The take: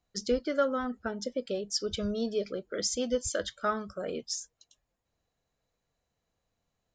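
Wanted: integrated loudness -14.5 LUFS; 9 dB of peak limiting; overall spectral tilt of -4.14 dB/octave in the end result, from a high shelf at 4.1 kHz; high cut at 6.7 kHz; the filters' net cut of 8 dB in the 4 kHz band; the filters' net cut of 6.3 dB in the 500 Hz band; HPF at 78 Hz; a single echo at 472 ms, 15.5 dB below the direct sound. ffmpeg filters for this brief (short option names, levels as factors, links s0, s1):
-af "highpass=78,lowpass=6700,equalizer=f=500:t=o:g=-7,equalizer=f=4000:t=o:g=-4,highshelf=f=4100:g=-8,alimiter=level_in=1.88:limit=0.0631:level=0:latency=1,volume=0.531,aecho=1:1:472:0.168,volume=17.8"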